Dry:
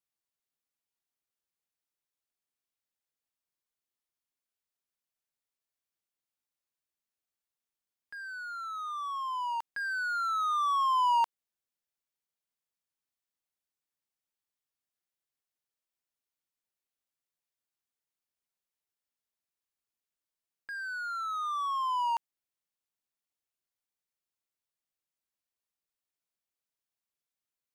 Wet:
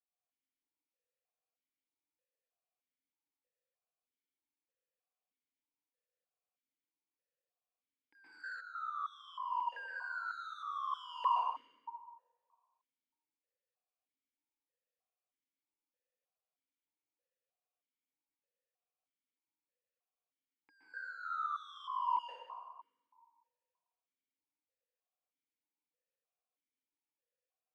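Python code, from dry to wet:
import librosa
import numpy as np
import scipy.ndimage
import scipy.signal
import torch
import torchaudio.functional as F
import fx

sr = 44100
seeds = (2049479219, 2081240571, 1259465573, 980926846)

y = fx.peak_eq(x, sr, hz=490.0, db=13.0, octaves=0.25)
y = fx.rev_plate(y, sr, seeds[0], rt60_s=1.6, hf_ratio=0.6, predelay_ms=110, drr_db=-6.0)
y = fx.leveller(y, sr, passes=3, at=(8.15, 8.61))
y = fx.vowel_held(y, sr, hz=3.2)
y = y * librosa.db_to_amplitude(1.0)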